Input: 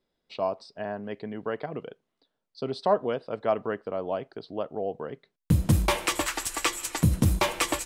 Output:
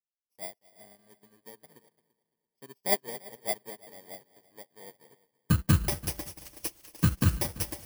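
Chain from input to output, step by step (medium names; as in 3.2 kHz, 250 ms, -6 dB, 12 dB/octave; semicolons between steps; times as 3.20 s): bit-reversed sample order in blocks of 32 samples; multi-head delay 113 ms, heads second and third, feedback 44%, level -9 dB; upward expansion 2.5:1, over -41 dBFS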